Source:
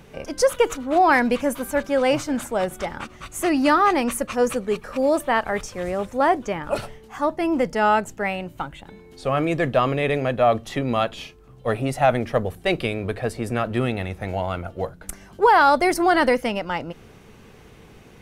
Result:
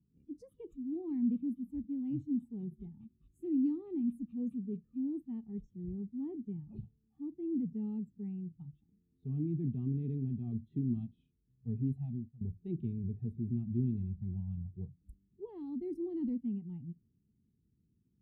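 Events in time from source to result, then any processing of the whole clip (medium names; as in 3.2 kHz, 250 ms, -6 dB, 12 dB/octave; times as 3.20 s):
11.95–12.41 s: fade out, to -24 dB
whole clip: high-pass 57 Hz; spectral noise reduction 18 dB; inverse Chebyshev low-pass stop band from 560 Hz, stop band 40 dB; trim -6 dB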